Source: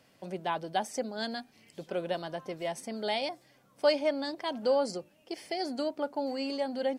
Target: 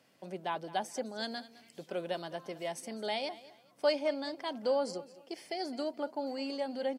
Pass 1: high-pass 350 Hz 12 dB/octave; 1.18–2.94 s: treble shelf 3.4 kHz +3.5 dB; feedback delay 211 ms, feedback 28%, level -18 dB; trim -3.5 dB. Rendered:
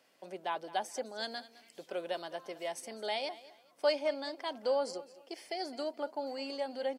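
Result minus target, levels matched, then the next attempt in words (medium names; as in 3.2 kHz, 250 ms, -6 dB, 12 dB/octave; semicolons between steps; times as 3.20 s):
125 Hz band -10.0 dB
high-pass 140 Hz 12 dB/octave; 1.18–2.94 s: treble shelf 3.4 kHz +3.5 dB; feedback delay 211 ms, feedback 28%, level -18 dB; trim -3.5 dB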